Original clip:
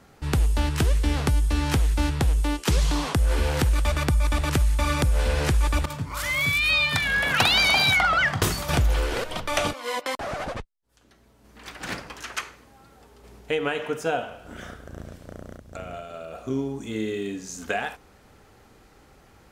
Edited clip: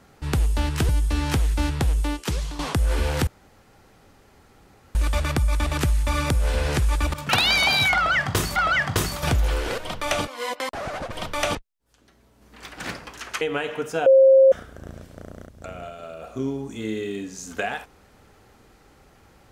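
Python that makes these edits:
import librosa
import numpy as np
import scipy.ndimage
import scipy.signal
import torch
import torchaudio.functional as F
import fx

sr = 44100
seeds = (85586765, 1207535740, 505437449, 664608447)

y = fx.edit(x, sr, fx.cut(start_s=0.89, length_s=0.4),
    fx.fade_out_to(start_s=2.42, length_s=0.57, floor_db=-12.5),
    fx.insert_room_tone(at_s=3.67, length_s=1.68),
    fx.cut(start_s=6.01, length_s=1.35),
    fx.repeat(start_s=8.02, length_s=0.61, count=2),
    fx.duplicate(start_s=9.26, length_s=0.43, to_s=10.58),
    fx.cut(start_s=12.44, length_s=1.08),
    fx.bleep(start_s=14.17, length_s=0.46, hz=534.0, db=-9.5), tone=tone)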